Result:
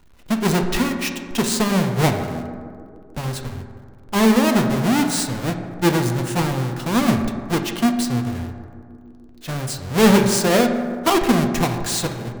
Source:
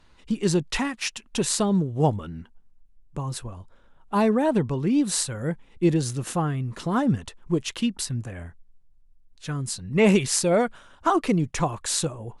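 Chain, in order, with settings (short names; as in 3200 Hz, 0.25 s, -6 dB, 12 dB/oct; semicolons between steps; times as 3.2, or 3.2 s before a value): half-waves squared off; narrowing echo 0.153 s, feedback 81%, band-pass 330 Hz, level -13.5 dB; reverb RT60 1.9 s, pre-delay 4 ms, DRR 4.5 dB; gain -1 dB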